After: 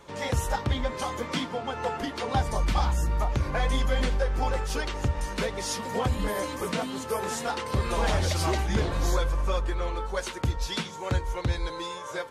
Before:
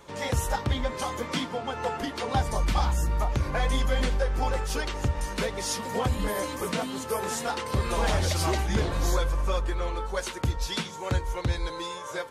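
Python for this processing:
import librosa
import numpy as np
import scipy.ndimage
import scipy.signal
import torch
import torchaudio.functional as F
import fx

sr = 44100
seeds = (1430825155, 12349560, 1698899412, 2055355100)

y = fx.high_shelf(x, sr, hz=8900.0, db=-5.0)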